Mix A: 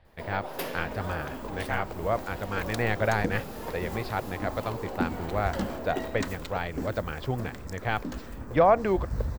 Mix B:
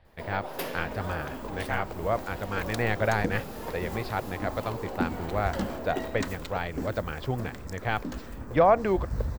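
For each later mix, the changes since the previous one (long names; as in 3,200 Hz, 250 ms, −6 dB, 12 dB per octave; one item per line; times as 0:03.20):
nothing changed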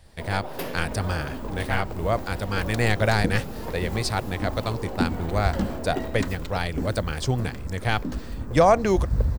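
speech: remove high-frequency loss of the air 420 metres
master: add low-shelf EQ 270 Hz +8.5 dB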